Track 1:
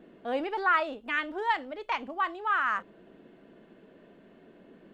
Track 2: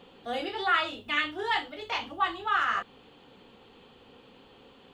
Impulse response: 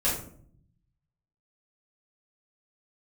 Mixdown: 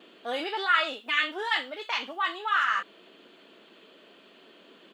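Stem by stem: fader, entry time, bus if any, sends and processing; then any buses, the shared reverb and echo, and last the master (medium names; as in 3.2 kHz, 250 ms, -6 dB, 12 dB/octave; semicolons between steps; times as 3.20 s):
+0.5 dB, 0.00 s, no send, peak limiter -24.5 dBFS, peak gain reduction 11 dB
+2.5 dB, 2.9 ms, no send, high-pass 1.2 kHz 24 dB/octave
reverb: none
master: high-pass 310 Hz 12 dB/octave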